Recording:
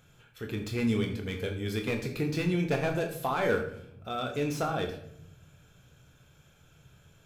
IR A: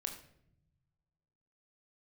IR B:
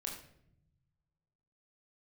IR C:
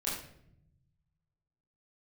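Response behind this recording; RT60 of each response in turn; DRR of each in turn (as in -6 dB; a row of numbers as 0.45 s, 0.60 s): A; 0.75 s, 0.70 s, 0.70 s; 3.0 dB, -1.5 dB, -9.0 dB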